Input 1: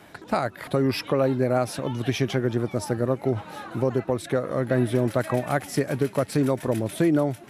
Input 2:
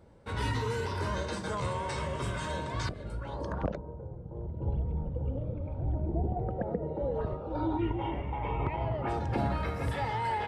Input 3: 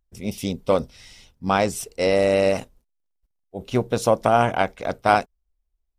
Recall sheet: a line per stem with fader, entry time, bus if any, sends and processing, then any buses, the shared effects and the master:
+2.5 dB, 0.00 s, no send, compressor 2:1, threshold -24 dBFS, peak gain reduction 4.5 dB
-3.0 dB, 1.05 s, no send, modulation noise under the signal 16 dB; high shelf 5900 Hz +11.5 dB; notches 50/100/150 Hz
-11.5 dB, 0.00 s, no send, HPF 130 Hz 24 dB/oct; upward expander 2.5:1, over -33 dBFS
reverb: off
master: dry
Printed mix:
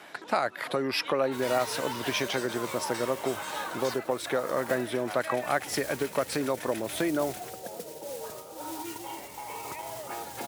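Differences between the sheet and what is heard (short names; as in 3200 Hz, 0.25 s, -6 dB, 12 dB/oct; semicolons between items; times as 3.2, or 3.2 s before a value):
stem 3 -11.5 dB -> -21.5 dB; master: extra weighting filter A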